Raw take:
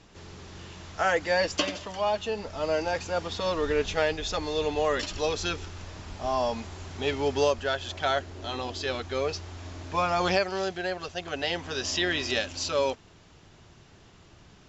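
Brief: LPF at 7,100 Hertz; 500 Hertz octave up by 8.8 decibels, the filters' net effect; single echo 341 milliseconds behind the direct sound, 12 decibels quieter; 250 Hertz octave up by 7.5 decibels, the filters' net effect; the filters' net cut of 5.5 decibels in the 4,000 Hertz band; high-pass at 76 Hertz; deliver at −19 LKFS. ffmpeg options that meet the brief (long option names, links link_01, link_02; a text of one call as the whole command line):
ffmpeg -i in.wav -af "highpass=76,lowpass=7100,equalizer=frequency=250:width_type=o:gain=6.5,equalizer=frequency=500:width_type=o:gain=9,equalizer=frequency=4000:width_type=o:gain=-7,aecho=1:1:341:0.251,volume=3.5dB" out.wav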